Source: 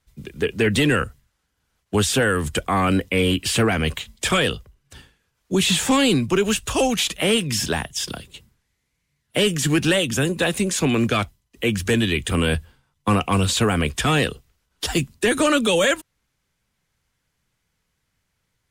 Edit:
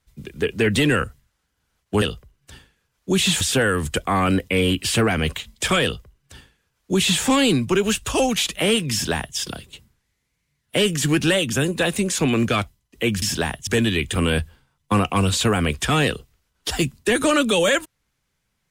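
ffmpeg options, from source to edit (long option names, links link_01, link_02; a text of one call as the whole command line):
ffmpeg -i in.wav -filter_complex "[0:a]asplit=5[link_01][link_02][link_03][link_04][link_05];[link_01]atrim=end=2.022[link_06];[link_02]atrim=start=4.448:end=5.842[link_07];[link_03]atrim=start=2.018:end=11.832[link_08];[link_04]atrim=start=7.528:end=7.982[link_09];[link_05]atrim=start=11.828[link_10];[link_06][link_07]acrossfade=duration=0.004:curve1=hsin:curve2=hsin[link_11];[link_11][link_08]acrossfade=duration=0.004:curve1=hsin:curve2=hsin[link_12];[link_12][link_09]acrossfade=duration=0.004:curve1=hsin:curve2=hsin[link_13];[link_13][link_10]acrossfade=duration=0.004:curve1=hsin:curve2=hsin" out.wav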